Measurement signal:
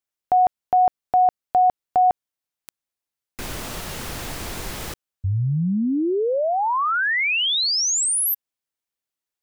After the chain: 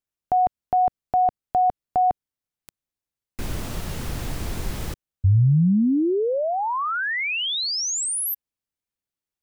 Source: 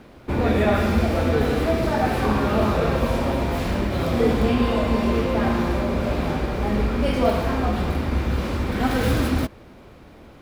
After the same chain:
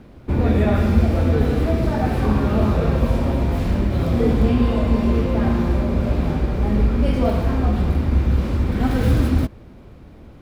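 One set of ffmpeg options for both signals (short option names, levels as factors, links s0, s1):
-af "lowshelf=f=300:g=11.5,volume=0.596"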